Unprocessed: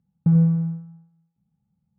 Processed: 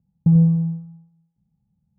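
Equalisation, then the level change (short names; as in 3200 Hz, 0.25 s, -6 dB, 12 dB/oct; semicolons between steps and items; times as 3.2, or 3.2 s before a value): LPF 1000 Hz 24 dB/oct; low shelf 93 Hz +10 dB; 0.0 dB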